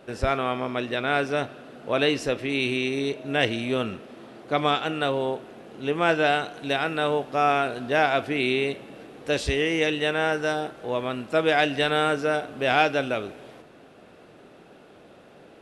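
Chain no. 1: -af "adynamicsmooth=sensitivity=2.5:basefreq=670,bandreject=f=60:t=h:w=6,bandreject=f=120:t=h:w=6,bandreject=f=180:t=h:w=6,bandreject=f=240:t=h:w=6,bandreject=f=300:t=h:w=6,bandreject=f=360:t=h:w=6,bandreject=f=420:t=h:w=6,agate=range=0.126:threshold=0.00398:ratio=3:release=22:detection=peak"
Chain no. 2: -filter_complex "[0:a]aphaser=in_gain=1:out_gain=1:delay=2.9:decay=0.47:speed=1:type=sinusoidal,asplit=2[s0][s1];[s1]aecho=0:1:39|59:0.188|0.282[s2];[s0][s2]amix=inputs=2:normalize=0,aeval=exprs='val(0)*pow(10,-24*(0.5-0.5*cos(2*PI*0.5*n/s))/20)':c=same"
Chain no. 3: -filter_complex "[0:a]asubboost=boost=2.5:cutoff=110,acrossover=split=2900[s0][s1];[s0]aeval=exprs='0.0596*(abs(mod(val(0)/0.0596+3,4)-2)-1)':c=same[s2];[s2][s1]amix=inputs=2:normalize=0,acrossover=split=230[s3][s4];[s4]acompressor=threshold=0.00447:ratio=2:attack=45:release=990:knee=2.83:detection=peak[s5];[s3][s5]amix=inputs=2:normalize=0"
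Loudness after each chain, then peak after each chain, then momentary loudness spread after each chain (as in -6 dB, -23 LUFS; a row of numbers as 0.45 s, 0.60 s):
-25.5 LUFS, -24.5 LUFS, -38.0 LUFS; -6.5 dBFS, -3.5 dBFS, -23.0 dBFS; 9 LU, 24 LU, 16 LU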